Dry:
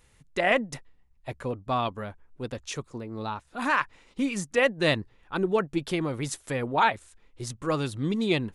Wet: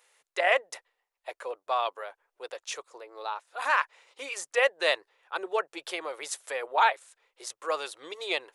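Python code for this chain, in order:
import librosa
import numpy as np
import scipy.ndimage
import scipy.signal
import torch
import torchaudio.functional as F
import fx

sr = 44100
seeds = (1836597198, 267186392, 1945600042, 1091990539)

y = scipy.signal.sosfilt(scipy.signal.cheby2(4, 40, 240.0, 'highpass', fs=sr, output='sos'), x)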